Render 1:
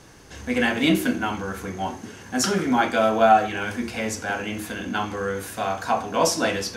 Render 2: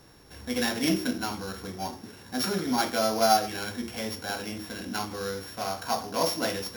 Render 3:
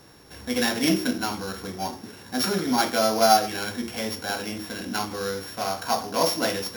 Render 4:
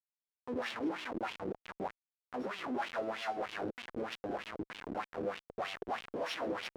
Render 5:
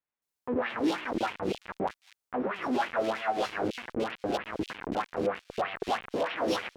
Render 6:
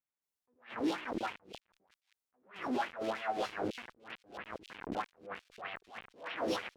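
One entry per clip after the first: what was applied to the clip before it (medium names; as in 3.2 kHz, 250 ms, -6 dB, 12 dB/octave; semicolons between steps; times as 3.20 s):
sorted samples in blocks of 8 samples; trim -6 dB
bass shelf 62 Hz -9.5 dB; trim +4 dB
Schmitt trigger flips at -27 dBFS; wah-wah 3.2 Hz 330–3100 Hz, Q 2.7; trim -2 dB
bands offset in time lows, highs 220 ms, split 2.8 kHz; trim +8 dB
attacks held to a fixed rise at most 180 dB/s; trim -5.5 dB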